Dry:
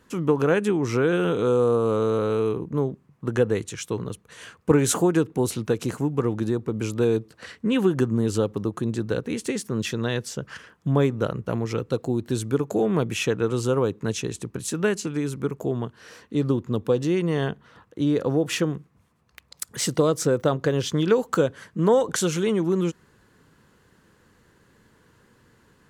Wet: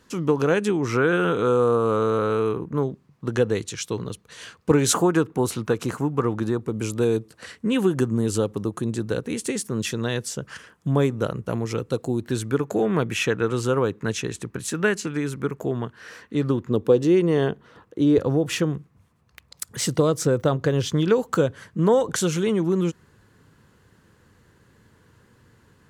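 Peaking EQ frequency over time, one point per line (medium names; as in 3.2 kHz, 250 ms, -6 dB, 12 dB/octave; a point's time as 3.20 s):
peaking EQ +6.5 dB 1.1 oct
5.1 kHz
from 0.85 s 1.4 kHz
from 2.83 s 4.5 kHz
from 4.93 s 1.2 kHz
from 6.61 s 9.5 kHz
from 12.24 s 1.7 kHz
from 16.70 s 390 Hz
from 18.18 s 96 Hz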